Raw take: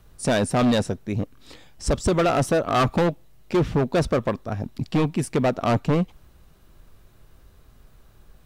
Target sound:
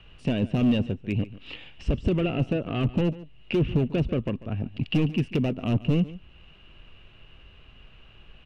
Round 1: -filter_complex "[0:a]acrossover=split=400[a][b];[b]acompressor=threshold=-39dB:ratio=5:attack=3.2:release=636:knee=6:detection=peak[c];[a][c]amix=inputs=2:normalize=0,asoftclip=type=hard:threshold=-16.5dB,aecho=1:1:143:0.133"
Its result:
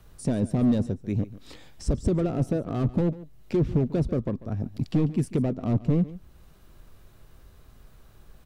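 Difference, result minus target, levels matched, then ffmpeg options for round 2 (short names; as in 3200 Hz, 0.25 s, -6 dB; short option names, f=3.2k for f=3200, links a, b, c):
2000 Hz band -10.5 dB
-filter_complex "[0:a]acrossover=split=400[a][b];[b]acompressor=threshold=-39dB:ratio=5:attack=3.2:release=636:knee=6:detection=peak,lowpass=f=2.8k:t=q:w=13[c];[a][c]amix=inputs=2:normalize=0,asoftclip=type=hard:threshold=-16.5dB,aecho=1:1:143:0.133"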